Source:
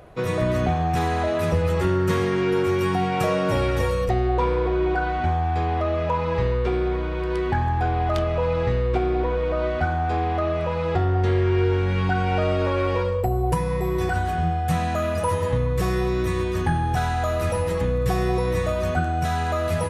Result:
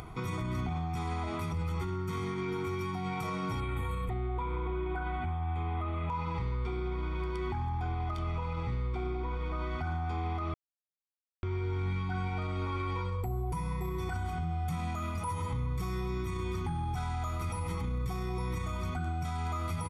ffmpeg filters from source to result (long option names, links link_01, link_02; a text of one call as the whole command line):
ffmpeg -i in.wav -filter_complex "[0:a]asettb=1/sr,asplit=3[link_01][link_02][link_03];[link_01]atrim=end=3.604[link_04];[link_02]atrim=start=3.6:end=6.1,asetpts=PTS-STARTPTS,afade=type=in:duration=0.004:curve=qsin,afade=type=out:start_time=2.496:duration=0.004:curve=qsin,asuperstop=centerf=5400:order=4:qfactor=1.3[link_05];[link_03]atrim=start=6.096[link_06];[link_04][link_05]acrossfade=duration=0.004:curve1=hsin:curve2=qsin[link_07];[link_07][link_06]acrossfade=duration=0.004:curve1=qsin:curve2=hsin,asplit=3[link_08][link_09][link_10];[link_08]atrim=end=10.54,asetpts=PTS-STARTPTS,afade=type=out:start_time=10.536:duration=0.004:curve=hsin[link_11];[link_09]atrim=start=10.54:end=11.43,asetpts=PTS-STARTPTS,volume=0[link_12];[link_10]atrim=start=11.43,asetpts=PTS-STARTPTS,afade=type=in:duration=0.004:curve=hsin[link_13];[link_11][link_12][link_13]concat=n=3:v=0:a=1,aecho=1:1:0.9:0.9,alimiter=limit=-17.5dB:level=0:latency=1:release=58,acompressor=mode=upward:threshold=-27dB:ratio=2.5,volume=-9dB" out.wav